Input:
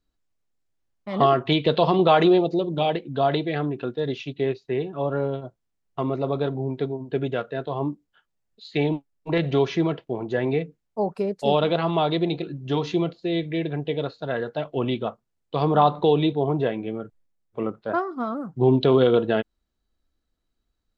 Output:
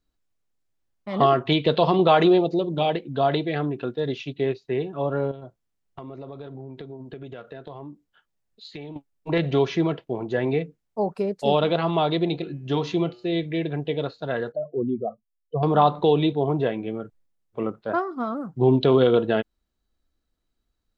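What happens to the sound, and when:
5.31–8.96 s: compression 10:1, threshold -34 dBFS
12.37–13.36 s: de-hum 120.6 Hz, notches 25
14.52–15.63 s: spectral contrast enhancement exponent 2.9

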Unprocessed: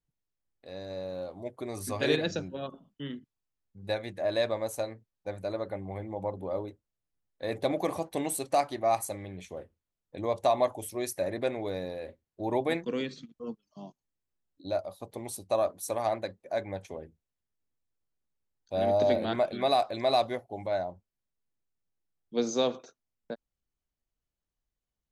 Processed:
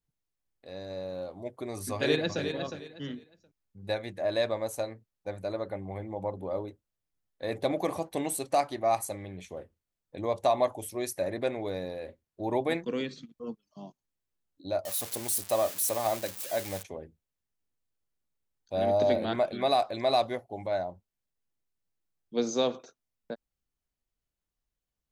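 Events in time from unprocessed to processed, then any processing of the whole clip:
1.93–2.43 s: echo throw 360 ms, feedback 25%, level -7.5 dB
14.85–16.83 s: zero-crossing glitches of -25.5 dBFS

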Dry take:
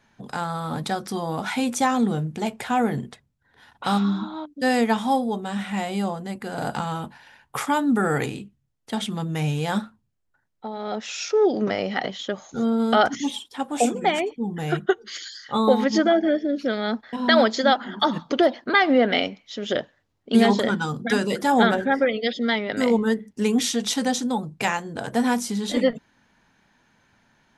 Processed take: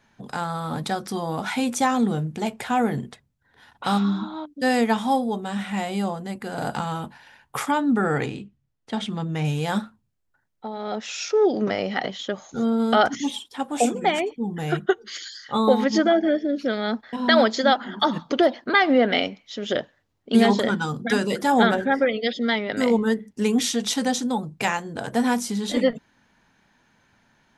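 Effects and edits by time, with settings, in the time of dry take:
7.71–9.45 s: distance through air 77 m

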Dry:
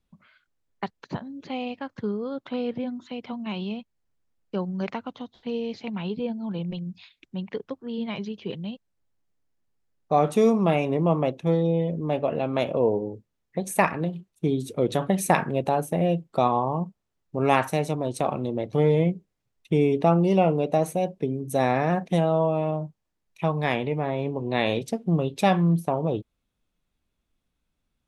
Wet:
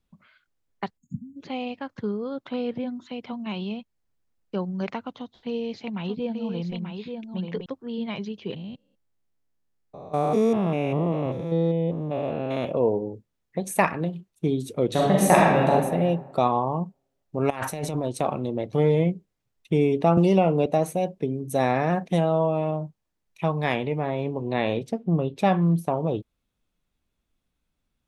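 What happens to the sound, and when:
0.98–1.36 s: spectral selection erased 270–6500 Hz
5.11–7.66 s: delay 884 ms -6 dB
8.56–12.65 s: spectrogram pixelated in time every 200 ms
14.89–15.69 s: reverb throw, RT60 1.4 s, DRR -4.5 dB
17.50–18.05 s: compressor with a negative ratio -30 dBFS
20.17–20.66 s: three bands compressed up and down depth 100%
24.53–25.62 s: treble shelf 3.4 kHz -11 dB

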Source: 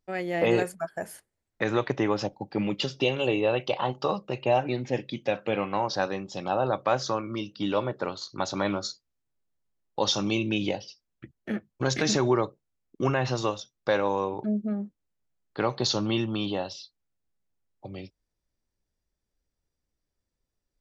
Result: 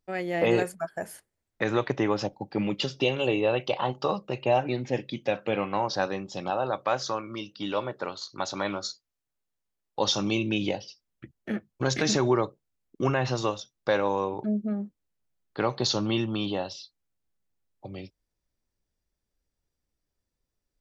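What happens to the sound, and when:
6.50–9.99 s: bass shelf 430 Hz -6.5 dB

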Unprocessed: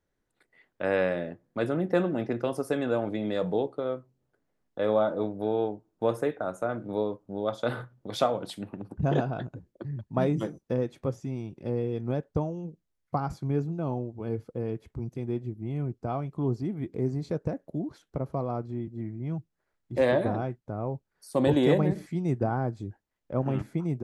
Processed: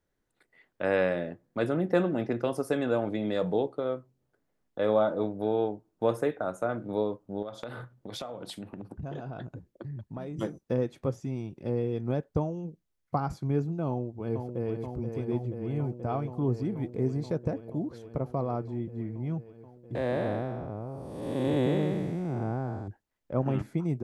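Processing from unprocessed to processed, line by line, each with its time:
7.42–10.39 s: compression, threshold -35 dBFS
13.87–14.72 s: echo throw 480 ms, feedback 85%, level -6 dB
19.95–22.88 s: spectral blur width 428 ms

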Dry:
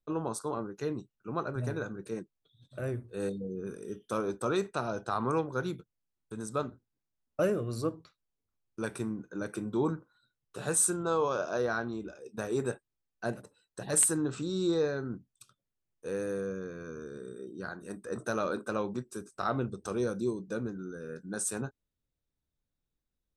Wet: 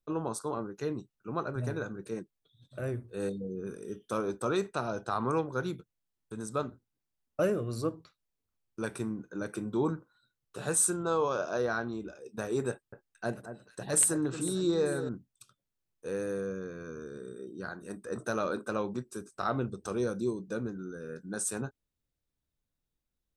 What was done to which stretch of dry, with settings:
12.70–15.09 s: echo whose repeats swap between lows and highs 224 ms, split 1.8 kHz, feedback 61%, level -10 dB

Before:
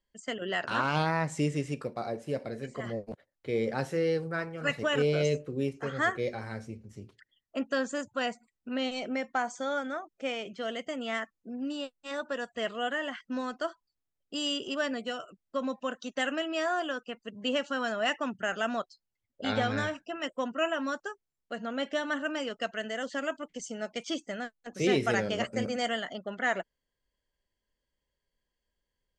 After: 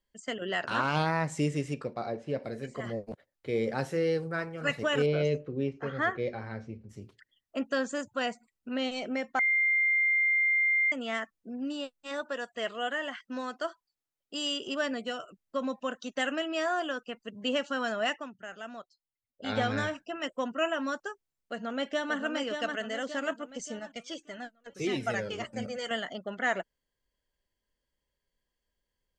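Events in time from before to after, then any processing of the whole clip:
1.73–2.42 s: low-pass 6.9 kHz -> 3.8 kHz
5.06–6.89 s: distance through air 180 m
9.39–10.92 s: bleep 2.1 kHz -22.5 dBFS
12.22–14.67 s: bass shelf 180 Hz -11 dB
18.03–19.60 s: dip -11.5 dB, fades 0.26 s
21.11–22.17 s: echo throw 580 ms, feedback 50%, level -5.5 dB
23.79–25.91 s: Shepard-style flanger falling 1.8 Hz

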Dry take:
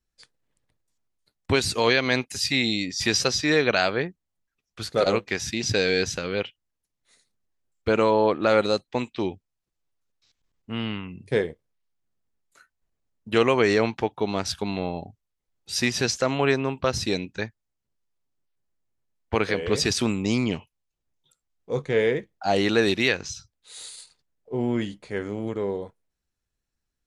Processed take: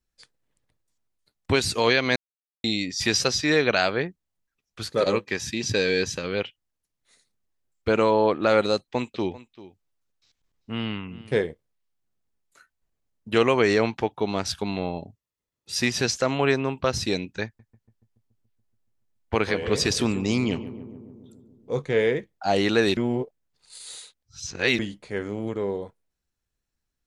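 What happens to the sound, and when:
2.16–2.64 s: mute
4.88–6.24 s: comb of notches 710 Hz
8.75–11.39 s: delay 392 ms -18 dB
14.98–15.80 s: comb of notches 760 Hz
17.45–21.79 s: filtered feedback delay 142 ms, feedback 71%, low-pass 1.3 kHz, level -12.5 dB
22.97–24.79 s: reverse

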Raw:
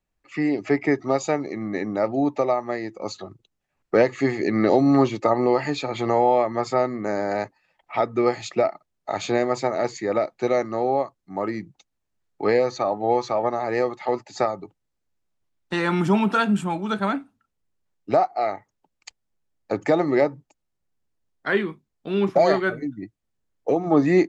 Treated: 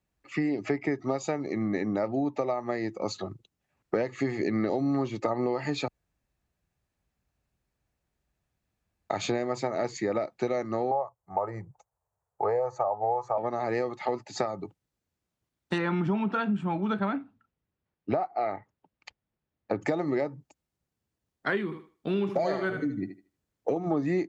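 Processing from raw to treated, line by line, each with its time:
5.88–9.10 s: room tone
10.91–13.38 s: FFT filter 120 Hz 0 dB, 270 Hz -21 dB, 450 Hz +2 dB, 900 Hz +9 dB, 3.7 kHz -23 dB, 7.4 kHz -3 dB
15.78–19.81 s: low-pass 3.1 kHz
21.64–23.78 s: thinning echo 77 ms, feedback 25%, high-pass 250 Hz, level -8.5 dB
whole clip: high-pass 60 Hz; bass shelf 220 Hz +5.5 dB; compression, threshold -25 dBFS

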